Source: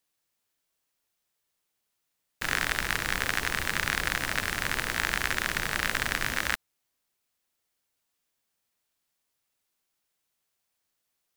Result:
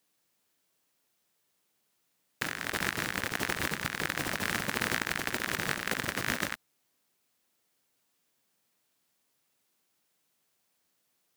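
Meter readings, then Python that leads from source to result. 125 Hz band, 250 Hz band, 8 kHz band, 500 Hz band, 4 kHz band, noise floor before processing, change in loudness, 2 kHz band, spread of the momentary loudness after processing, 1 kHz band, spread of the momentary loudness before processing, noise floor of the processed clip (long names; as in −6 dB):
−1.5 dB, +2.5 dB, −3.0 dB, +0.5 dB, −4.0 dB, −80 dBFS, −3.5 dB, −4.5 dB, 3 LU, −3.0 dB, 2 LU, −76 dBFS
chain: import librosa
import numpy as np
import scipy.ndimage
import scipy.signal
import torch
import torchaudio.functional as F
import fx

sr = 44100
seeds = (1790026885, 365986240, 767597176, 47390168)

y = scipy.signal.sosfilt(scipy.signal.butter(2, 160.0, 'highpass', fs=sr, output='sos'), x)
y = fx.low_shelf(y, sr, hz=350.0, db=8.5)
y = fx.over_compress(y, sr, threshold_db=-33.0, ratio=-0.5)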